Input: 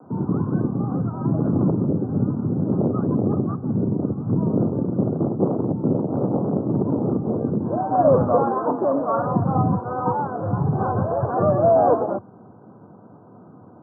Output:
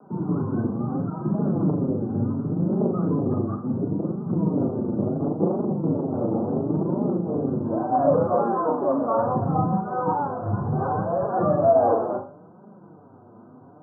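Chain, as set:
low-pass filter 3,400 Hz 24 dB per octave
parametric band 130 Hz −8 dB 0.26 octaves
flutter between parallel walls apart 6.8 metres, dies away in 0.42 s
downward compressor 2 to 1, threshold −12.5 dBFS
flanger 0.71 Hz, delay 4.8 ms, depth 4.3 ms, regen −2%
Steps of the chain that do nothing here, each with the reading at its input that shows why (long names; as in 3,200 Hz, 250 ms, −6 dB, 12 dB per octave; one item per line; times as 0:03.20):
low-pass filter 3,400 Hz: nothing at its input above 1,400 Hz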